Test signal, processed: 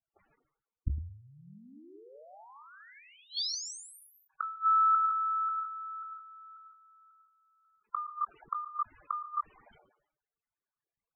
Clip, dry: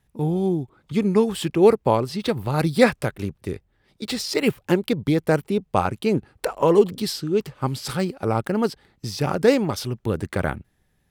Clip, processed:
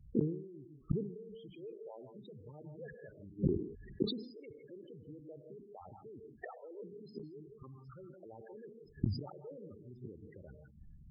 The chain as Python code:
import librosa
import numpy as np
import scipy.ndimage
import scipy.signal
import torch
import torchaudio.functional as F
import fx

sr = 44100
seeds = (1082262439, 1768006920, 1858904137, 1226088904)

p1 = fx.envelope_sharpen(x, sr, power=3.0)
p2 = scipy.signal.sosfilt(scipy.signal.butter(2, 2200.0, 'lowpass', fs=sr, output='sos'), p1)
p3 = fx.over_compress(p2, sr, threshold_db=-26.0, ratio=-1.0)
p4 = p2 + F.gain(torch.from_numpy(p3), 2.0).numpy()
p5 = fx.rev_gated(p4, sr, seeds[0], gate_ms=190, shape='rising', drr_db=4.5)
p6 = fx.gate_flip(p5, sr, shuts_db=-17.0, range_db=-35)
p7 = fx.spec_topn(p6, sr, count=16)
y = fx.sustainer(p7, sr, db_per_s=83.0)